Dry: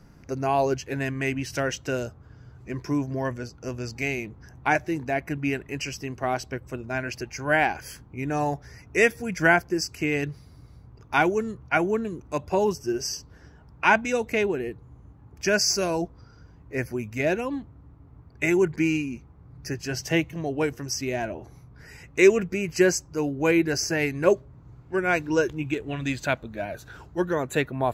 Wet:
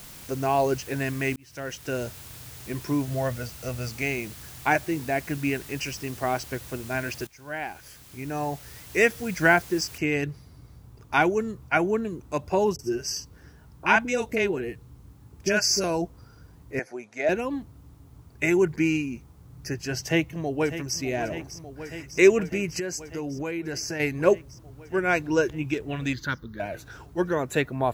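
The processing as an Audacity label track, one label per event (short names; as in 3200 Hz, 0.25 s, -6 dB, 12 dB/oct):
1.360000	2.070000	fade in
3.080000	3.890000	comb 1.5 ms, depth 64%
7.270000	9.180000	fade in, from -18.5 dB
9.980000	9.980000	noise floor step -45 dB -69 dB
12.760000	15.840000	bands offset in time lows, highs 30 ms, split 670 Hz
16.790000	17.290000	speaker cabinet 470–8500 Hz, peaks and dips at 710 Hz +7 dB, 1100 Hz -6 dB, 2800 Hz -9 dB, 4900 Hz -5 dB, 7800 Hz -6 dB
20.040000	20.980000	echo throw 0.6 s, feedback 80%, level -12 dB
22.790000	24.000000	compressor, threshold -28 dBFS
26.130000	26.600000	fixed phaser centre 2500 Hz, stages 6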